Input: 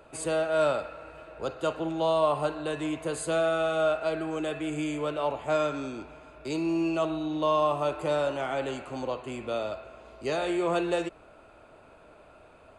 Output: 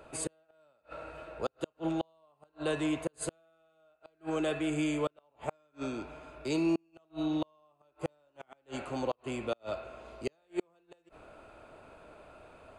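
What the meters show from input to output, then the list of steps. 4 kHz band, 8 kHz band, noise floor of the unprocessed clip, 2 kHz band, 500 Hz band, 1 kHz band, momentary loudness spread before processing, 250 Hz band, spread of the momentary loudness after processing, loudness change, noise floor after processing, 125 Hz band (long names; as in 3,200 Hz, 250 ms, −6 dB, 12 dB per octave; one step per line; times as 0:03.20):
−7.0 dB, −2.0 dB, −54 dBFS, −8.0 dB, −10.5 dB, −12.5 dB, 12 LU, −3.0 dB, 22 LU, −7.0 dB, −73 dBFS, −4.5 dB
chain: gate with flip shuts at −21 dBFS, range −41 dB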